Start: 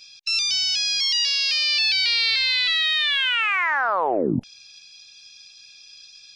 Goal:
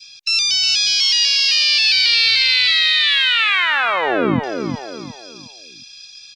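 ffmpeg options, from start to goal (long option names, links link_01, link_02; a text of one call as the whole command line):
ffmpeg -i in.wav -af "aecho=1:1:360|720|1080|1440:0.501|0.17|0.0579|0.0197,adynamicequalizer=threshold=0.0224:dfrequency=860:dqfactor=1.1:tfrequency=860:tqfactor=1.1:attack=5:release=100:ratio=0.375:range=2.5:mode=cutabove:tftype=bell,volume=5.5dB" out.wav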